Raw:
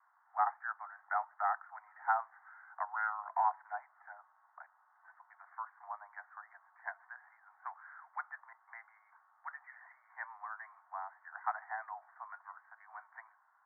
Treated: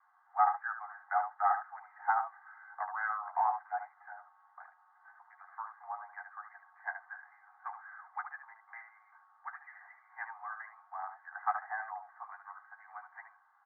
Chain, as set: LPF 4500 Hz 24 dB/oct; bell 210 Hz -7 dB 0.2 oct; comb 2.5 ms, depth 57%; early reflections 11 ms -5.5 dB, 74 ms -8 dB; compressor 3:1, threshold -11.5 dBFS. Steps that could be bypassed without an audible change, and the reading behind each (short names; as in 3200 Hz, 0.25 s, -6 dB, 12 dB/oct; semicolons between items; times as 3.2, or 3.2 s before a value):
LPF 4500 Hz: input band ends at 2200 Hz; bell 210 Hz: input band starts at 570 Hz; compressor, threshold -11.5 dBFS: input peak -16.0 dBFS